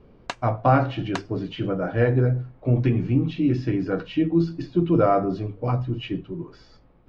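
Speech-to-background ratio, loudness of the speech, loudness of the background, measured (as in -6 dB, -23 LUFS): 14.0 dB, -23.5 LUFS, -37.5 LUFS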